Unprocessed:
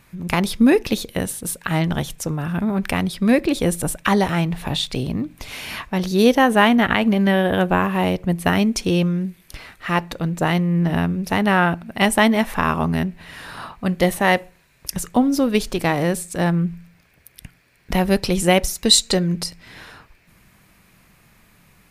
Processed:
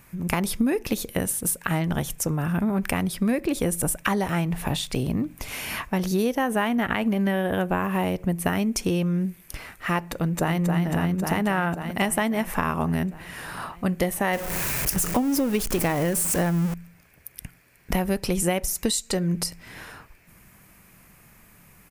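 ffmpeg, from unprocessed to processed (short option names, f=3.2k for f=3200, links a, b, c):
-filter_complex "[0:a]asplit=2[a][b];[b]afade=t=in:st=10.08:d=0.01,afade=t=out:st=10.6:d=0.01,aecho=0:1:270|540|810|1080|1350|1620|1890|2160|2430|2700|2970|3240:0.630957|0.473218|0.354914|0.266185|0.199639|0.149729|0.112297|0.0842226|0.063167|0.0473752|0.0355314|0.0266486[c];[a][c]amix=inputs=2:normalize=0,asettb=1/sr,asplit=3[d][e][f];[d]atrim=end=14.334[g];[e]atrim=start=14.33:end=16.74,asetpts=PTS-STARTPTS,afade=t=in:d=0.004:c=qsin,afade=t=out:st=2.406:d=0.004:c=qsin,aeval=exprs='val(0)+0.5*0.075*sgn(val(0))':c=same[h];[f]atrim=start=16.736[i];[g][h]acrossfade=d=0.004:c1=hsin:c2=qsin[j];[j][i]acrossfade=d=0.004:c1=qsin:c2=hsin,highshelf=f=9.3k:g=8.5,acompressor=threshold=-20dB:ratio=6,equalizer=f=3.9k:t=o:w=0.68:g=-7"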